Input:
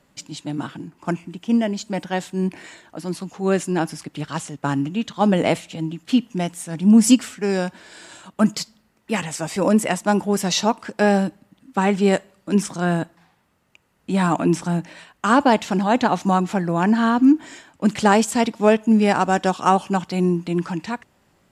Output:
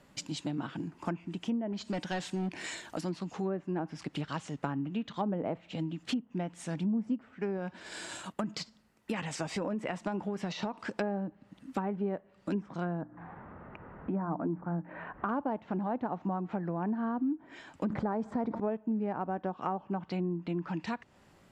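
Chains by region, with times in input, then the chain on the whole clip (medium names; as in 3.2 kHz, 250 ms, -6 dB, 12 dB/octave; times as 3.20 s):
1.72–3.01 s: treble shelf 3.4 kHz +10.5 dB + hard clipper -21 dBFS
7.56–10.82 s: gate -47 dBFS, range -6 dB + treble shelf 8.4 kHz +7 dB + compression, threshold -18 dBFS
13.01–15.29 s: low-pass 1.6 kHz 24 dB/octave + hum notches 60/120/180/240/300 Hz + upward compressor, threshold -31 dBFS
17.90–18.60 s: peaking EQ 2.8 kHz -12.5 dB 0.42 oct + level flattener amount 70%
whole clip: low-pass that closes with the level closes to 1.1 kHz, closed at -16 dBFS; compression 4:1, threshold -33 dBFS; treble shelf 6.7 kHz -5 dB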